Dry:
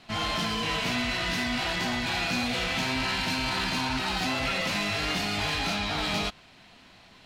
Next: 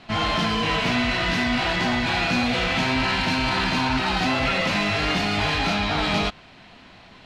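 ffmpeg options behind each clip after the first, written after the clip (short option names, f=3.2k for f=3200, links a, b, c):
-af "aemphasis=mode=reproduction:type=50fm,volume=7dB"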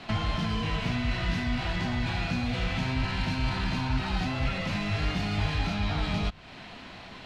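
-filter_complex "[0:a]acrossover=split=150[a][b];[b]acompressor=threshold=-35dB:ratio=8[c];[a][c]amix=inputs=2:normalize=0,volume=3dB"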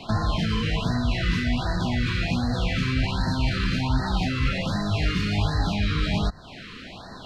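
-af "afftfilt=real='re*(1-between(b*sr/1024,700*pow(2800/700,0.5+0.5*sin(2*PI*1.3*pts/sr))/1.41,700*pow(2800/700,0.5+0.5*sin(2*PI*1.3*pts/sr))*1.41))':imag='im*(1-between(b*sr/1024,700*pow(2800/700,0.5+0.5*sin(2*PI*1.3*pts/sr))/1.41,700*pow(2800/700,0.5+0.5*sin(2*PI*1.3*pts/sr))*1.41))':win_size=1024:overlap=0.75,volume=5dB"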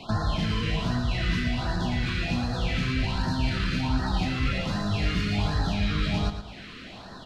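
-af "aecho=1:1:113|226|339|452:0.355|0.121|0.041|0.0139,volume=-2.5dB"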